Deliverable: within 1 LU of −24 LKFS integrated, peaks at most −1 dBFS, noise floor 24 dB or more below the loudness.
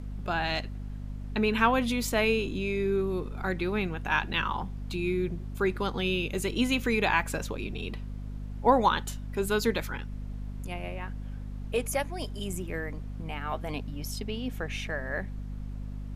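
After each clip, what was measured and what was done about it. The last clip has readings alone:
mains hum 50 Hz; hum harmonics up to 250 Hz; level of the hum −35 dBFS; background noise floor −38 dBFS; target noise floor −55 dBFS; integrated loudness −30.5 LKFS; sample peak −9.5 dBFS; target loudness −24.0 LKFS
→ hum removal 50 Hz, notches 5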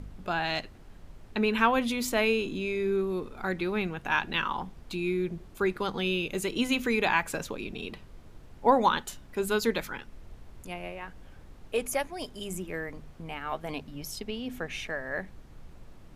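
mains hum none found; background noise floor −50 dBFS; target noise floor −54 dBFS
→ noise reduction from a noise print 6 dB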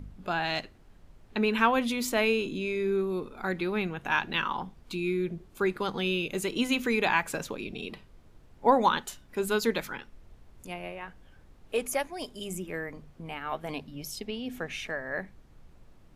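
background noise floor −56 dBFS; integrated loudness −30.0 LKFS; sample peak −9.5 dBFS; target loudness −24.0 LKFS
→ level +6 dB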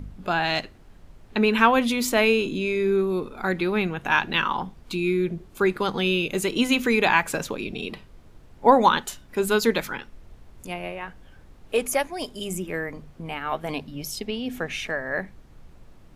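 integrated loudness −24.0 LKFS; sample peak −3.5 dBFS; background noise floor −50 dBFS

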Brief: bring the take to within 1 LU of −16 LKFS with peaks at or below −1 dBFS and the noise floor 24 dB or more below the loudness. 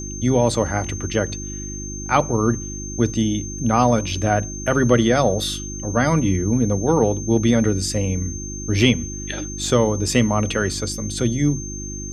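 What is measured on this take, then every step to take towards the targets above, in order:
mains hum 50 Hz; hum harmonics up to 350 Hz; level of the hum −29 dBFS; interfering tone 6,300 Hz; level of the tone −32 dBFS; integrated loudness −20.5 LKFS; sample peak −2.0 dBFS; target loudness −16.0 LKFS
→ hum removal 50 Hz, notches 7
notch filter 6,300 Hz, Q 30
level +4.5 dB
brickwall limiter −1 dBFS

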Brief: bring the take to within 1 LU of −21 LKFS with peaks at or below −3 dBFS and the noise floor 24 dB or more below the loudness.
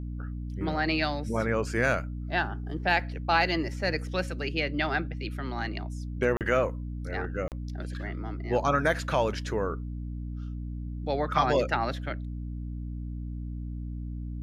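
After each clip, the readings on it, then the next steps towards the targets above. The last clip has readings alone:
number of dropouts 2; longest dropout 38 ms; mains hum 60 Hz; hum harmonics up to 300 Hz; level of the hum −33 dBFS; integrated loudness −30.0 LKFS; sample peak −10.0 dBFS; target loudness −21.0 LKFS
→ repair the gap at 0:06.37/0:07.48, 38 ms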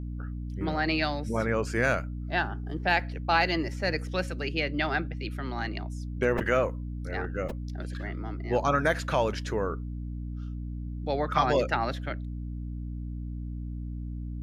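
number of dropouts 0; mains hum 60 Hz; hum harmonics up to 300 Hz; level of the hum −33 dBFS
→ mains-hum notches 60/120/180/240/300 Hz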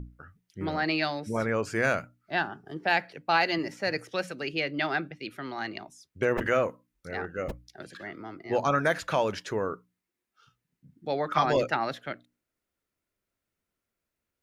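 mains hum none found; integrated loudness −29.0 LKFS; sample peak −10.0 dBFS; target loudness −21.0 LKFS
→ level +8 dB
brickwall limiter −3 dBFS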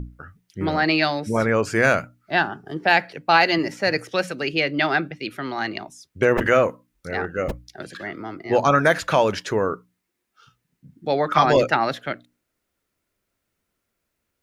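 integrated loudness −21.5 LKFS; sample peak −3.0 dBFS; background noise floor −78 dBFS

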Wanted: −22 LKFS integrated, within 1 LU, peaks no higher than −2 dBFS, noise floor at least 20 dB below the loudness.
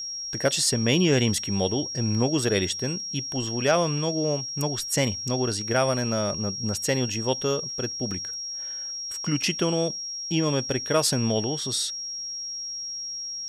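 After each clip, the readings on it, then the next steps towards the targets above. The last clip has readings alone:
number of dropouts 1; longest dropout 3.2 ms; interfering tone 5,600 Hz; level of the tone −31 dBFS; integrated loudness −25.5 LKFS; sample peak −8.5 dBFS; target loudness −22.0 LKFS
→ repair the gap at 0:08.11, 3.2 ms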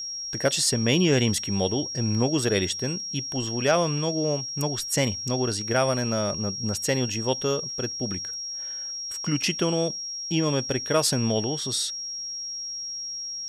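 number of dropouts 0; interfering tone 5,600 Hz; level of the tone −31 dBFS
→ notch filter 5,600 Hz, Q 30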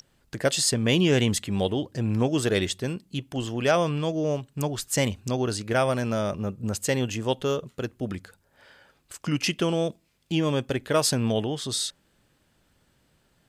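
interfering tone none found; integrated loudness −26.0 LKFS; sample peak −9.0 dBFS; target loudness −22.0 LKFS
→ level +4 dB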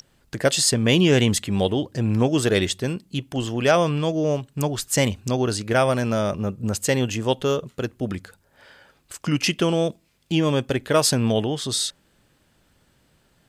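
integrated loudness −22.0 LKFS; sample peak −5.0 dBFS; background noise floor −63 dBFS

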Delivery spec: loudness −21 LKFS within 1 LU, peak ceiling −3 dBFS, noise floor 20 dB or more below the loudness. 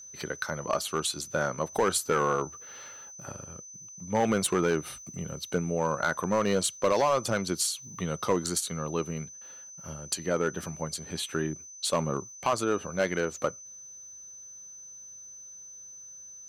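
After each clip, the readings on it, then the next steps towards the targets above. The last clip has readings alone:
share of clipped samples 0.6%; peaks flattened at −18.0 dBFS; interfering tone 6,100 Hz; level of the tone −44 dBFS; integrated loudness −29.5 LKFS; sample peak −18.0 dBFS; target loudness −21.0 LKFS
→ clipped peaks rebuilt −18 dBFS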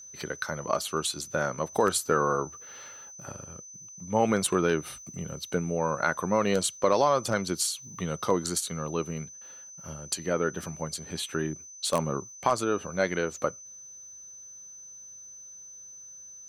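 share of clipped samples 0.0%; interfering tone 6,100 Hz; level of the tone −44 dBFS
→ notch filter 6,100 Hz, Q 30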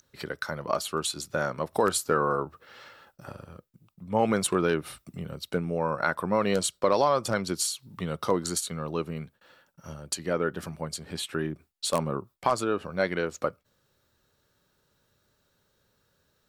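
interfering tone none found; integrated loudness −29.0 LKFS; sample peak −9.0 dBFS; target loudness −21.0 LKFS
→ level +8 dB
brickwall limiter −3 dBFS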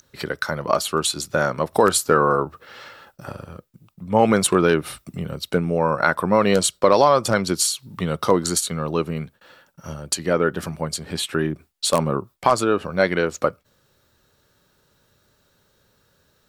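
integrated loudness −21.0 LKFS; sample peak −3.0 dBFS; background noise floor −64 dBFS

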